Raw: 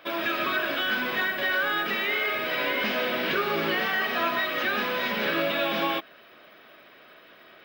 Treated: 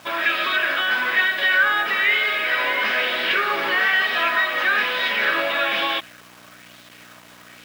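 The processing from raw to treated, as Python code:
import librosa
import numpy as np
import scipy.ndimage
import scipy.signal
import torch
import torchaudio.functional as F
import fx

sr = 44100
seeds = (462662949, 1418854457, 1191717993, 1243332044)

y = fx.dynamic_eq(x, sr, hz=1800.0, q=3.1, threshold_db=-42.0, ratio=4.0, max_db=4)
y = fx.add_hum(y, sr, base_hz=60, snr_db=13)
y = fx.weighting(y, sr, curve='A')
y = fx.quant_dither(y, sr, seeds[0], bits=8, dither='none')
y = scipy.signal.sosfilt(scipy.signal.butter(2, 82.0, 'highpass', fs=sr, output='sos'), y)
y = fx.bell_lfo(y, sr, hz=1.1, low_hz=850.0, high_hz=3800.0, db=6)
y = F.gain(torch.from_numpy(y), 2.5).numpy()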